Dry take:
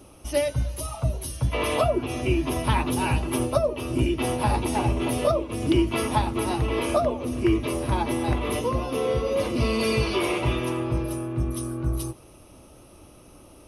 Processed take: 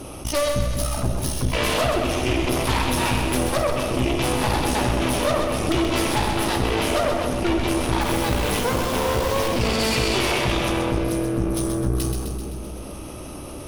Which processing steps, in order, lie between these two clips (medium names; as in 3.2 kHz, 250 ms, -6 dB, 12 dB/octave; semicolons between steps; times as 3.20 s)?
dynamic bell 5 kHz, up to +6 dB, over -48 dBFS, Q 0.72; 8.01–9.48 s: word length cut 6-bit, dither none; Chebyshev shaper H 8 -13 dB, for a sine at -8.5 dBFS; two-band feedback delay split 560 Hz, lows 208 ms, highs 129 ms, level -7 dB; reverberation, pre-delay 16 ms, DRR 7.5 dB; level flattener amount 50%; trim -4 dB